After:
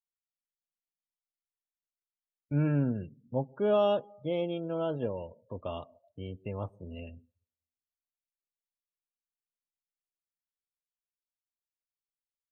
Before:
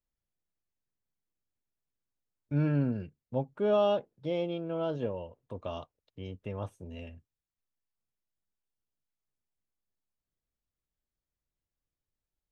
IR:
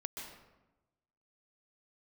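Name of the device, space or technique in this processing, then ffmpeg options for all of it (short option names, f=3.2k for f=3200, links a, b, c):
ducked reverb: -filter_complex "[0:a]asplit=3[a][b][c];[1:a]atrim=start_sample=2205[d];[b][d]afir=irnorm=-1:irlink=0[e];[c]apad=whole_len=551884[f];[e][f]sidechaincompress=threshold=-47dB:ratio=4:attack=6.2:release=1340,volume=-4dB[g];[a][g]amix=inputs=2:normalize=0,afftdn=nr=29:nf=-51"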